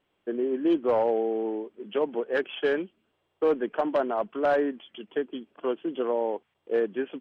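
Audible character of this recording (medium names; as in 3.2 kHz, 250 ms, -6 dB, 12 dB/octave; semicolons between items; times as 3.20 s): noise floor -76 dBFS; spectral tilt -3.0 dB/octave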